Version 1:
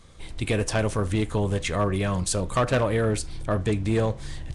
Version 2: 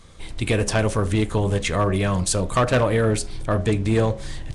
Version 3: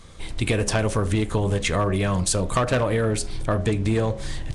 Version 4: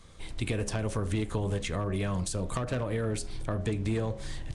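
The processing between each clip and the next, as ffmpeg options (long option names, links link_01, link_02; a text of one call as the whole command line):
ffmpeg -i in.wav -af "bandreject=frequency=68.91:width_type=h:width=4,bandreject=frequency=137.82:width_type=h:width=4,bandreject=frequency=206.73:width_type=h:width=4,bandreject=frequency=275.64:width_type=h:width=4,bandreject=frequency=344.55:width_type=h:width=4,bandreject=frequency=413.46:width_type=h:width=4,bandreject=frequency=482.37:width_type=h:width=4,bandreject=frequency=551.28:width_type=h:width=4,bandreject=frequency=620.19:width_type=h:width=4,bandreject=frequency=689.1:width_type=h:width=4,bandreject=frequency=758.01:width_type=h:width=4,bandreject=frequency=826.92:width_type=h:width=4,volume=4dB" out.wav
ffmpeg -i in.wav -af "acompressor=threshold=-20dB:ratio=6,volume=2dB" out.wav
ffmpeg -i in.wav -filter_complex "[0:a]acrossover=split=390[link_01][link_02];[link_02]acompressor=threshold=-26dB:ratio=5[link_03];[link_01][link_03]amix=inputs=2:normalize=0,volume=-7.5dB" out.wav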